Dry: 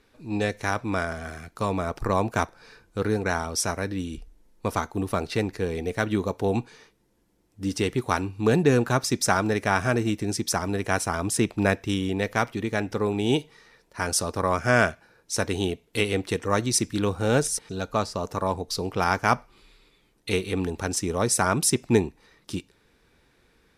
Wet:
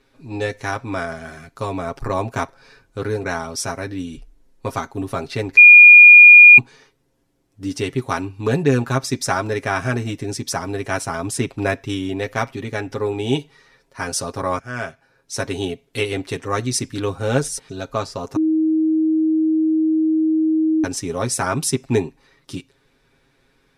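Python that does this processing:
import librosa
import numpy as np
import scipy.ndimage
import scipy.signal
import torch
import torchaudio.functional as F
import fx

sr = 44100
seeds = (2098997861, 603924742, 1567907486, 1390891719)

y = fx.edit(x, sr, fx.bleep(start_s=5.57, length_s=1.01, hz=2430.0, db=-6.5),
    fx.fade_in_from(start_s=14.59, length_s=0.84, floor_db=-17.0),
    fx.bleep(start_s=18.36, length_s=2.48, hz=316.0, db=-13.0), tone=tone)
y = fx.high_shelf(y, sr, hz=12000.0, db=-6.5)
y = y + 0.72 * np.pad(y, (int(7.4 * sr / 1000.0), 0))[:len(y)]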